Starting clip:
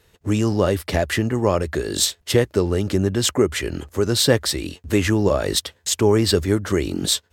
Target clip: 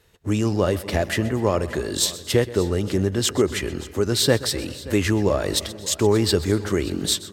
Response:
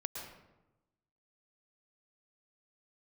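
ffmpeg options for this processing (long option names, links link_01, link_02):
-filter_complex "[0:a]aecho=1:1:580:0.119,asplit=2[link_01][link_02];[1:a]atrim=start_sample=2205,adelay=127[link_03];[link_02][link_03]afir=irnorm=-1:irlink=0,volume=-15dB[link_04];[link_01][link_04]amix=inputs=2:normalize=0,volume=-2dB"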